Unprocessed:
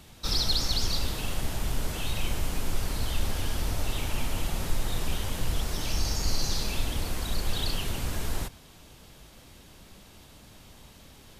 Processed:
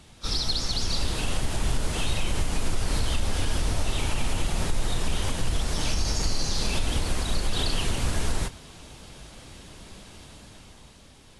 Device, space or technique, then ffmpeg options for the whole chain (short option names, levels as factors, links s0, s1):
low-bitrate web radio: -af "dynaudnorm=f=150:g=13:m=2.11,alimiter=limit=0.178:level=0:latency=1:release=125" -ar 24000 -c:a aac -b:a 48k